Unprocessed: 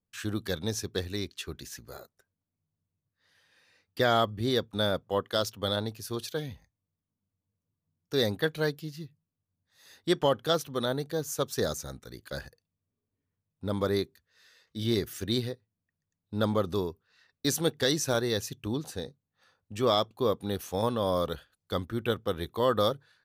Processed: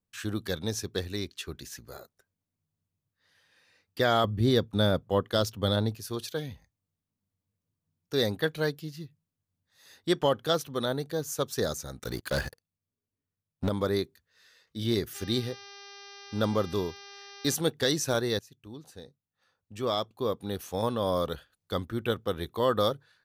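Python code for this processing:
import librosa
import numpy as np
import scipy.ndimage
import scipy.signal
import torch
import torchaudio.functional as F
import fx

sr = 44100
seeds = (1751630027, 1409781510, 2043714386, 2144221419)

y = fx.low_shelf(x, sr, hz=310.0, db=8.5, at=(4.24, 5.95))
y = fx.leveller(y, sr, passes=3, at=(11.99, 13.69))
y = fx.dmg_buzz(y, sr, base_hz=400.0, harmonics=15, level_db=-48.0, tilt_db=-1, odd_only=False, at=(15.14, 17.54), fade=0.02)
y = fx.edit(y, sr, fx.fade_in_from(start_s=18.39, length_s=2.7, floor_db=-18.0), tone=tone)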